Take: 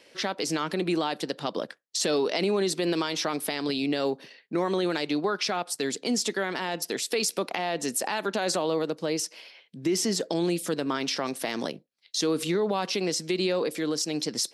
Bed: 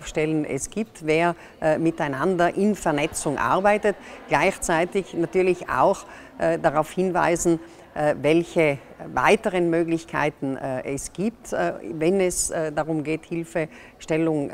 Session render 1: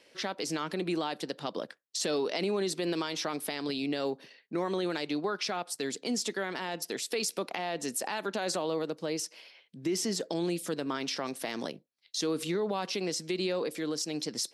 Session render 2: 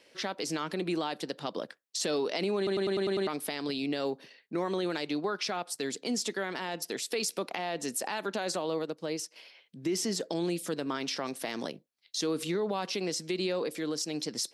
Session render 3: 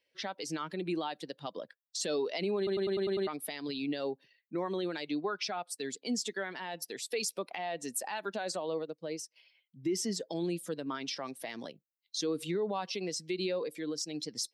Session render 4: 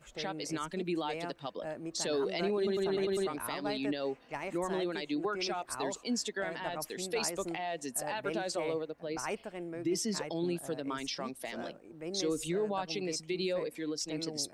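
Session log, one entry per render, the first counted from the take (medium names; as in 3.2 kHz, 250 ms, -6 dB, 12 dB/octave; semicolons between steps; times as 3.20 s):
trim -5 dB
2.57 s: stutter in place 0.10 s, 7 plays; 8.42–9.36 s: upward expansion, over -43 dBFS
expander on every frequency bin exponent 1.5
add bed -20 dB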